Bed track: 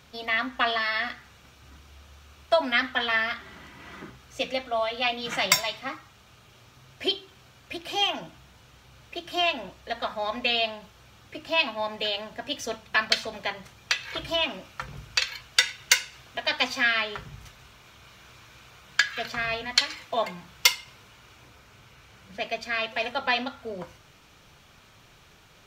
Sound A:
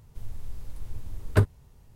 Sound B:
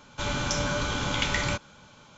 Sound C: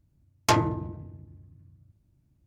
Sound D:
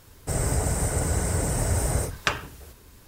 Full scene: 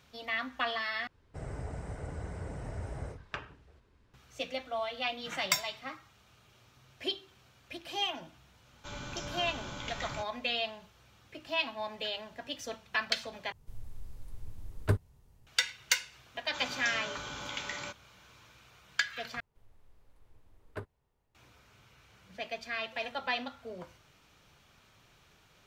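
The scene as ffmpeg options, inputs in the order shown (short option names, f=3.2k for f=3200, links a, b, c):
-filter_complex "[2:a]asplit=2[a][b];[1:a]asplit=2[c][d];[0:a]volume=-8dB[e];[4:a]lowpass=3.2k[f];[b]highpass=f=420:p=1[g];[d]bass=f=250:g=-12,treble=f=4k:g=-10[h];[e]asplit=4[i][j][k][l];[i]atrim=end=1.074[m];[f]atrim=end=3.07,asetpts=PTS-STARTPTS,volume=-14.5dB[n];[j]atrim=start=4.136:end=13.524[o];[c]atrim=end=1.95,asetpts=PTS-STARTPTS,volume=-7.5dB[p];[k]atrim=start=15.466:end=19.404[q];[h]atrim=end=1.95,asetpts=PTS-STARTPTS,volume=-14dB[r];[l]atrim=start=21.346[s];[a]atrim=end=2.17,asetpts=PTS-STARTPTS,volume=-13.5dB,afade=t=in:d=0.004:c=hsin,afade=t=out:st=2.166:d=0.004:c=hsin,adelay=381906S[t];[g]atrim=end=2.17,asetpts=PTS-STARTPTS,volume=-10.5dB,afade=t=in:d=0.004:c=hsin,afade=t=out:st=2.166:d=0.004:c=hsin,adelay=16350[u];[m][n]acrossfade=d=0.004:c1=hsin:c2=hsin[v];[v][o]acrossfade=d=0.004:c1=hsin:c2=hsin[w];[w][p]acrossfade=d=0.004:c1=hsin:c2=hsin[x];[x][q]acrossfade=d=0.004:c1=hsin:c2=hsin[y];[y][r]acrossfade=d=0.004:c1=hsin:c2=hsin[z];[z][s]acrossfade=d=0.004:c1=hsin:c2=hsin[aa];[aa][t][u]amix=inputs=3:normalize=0"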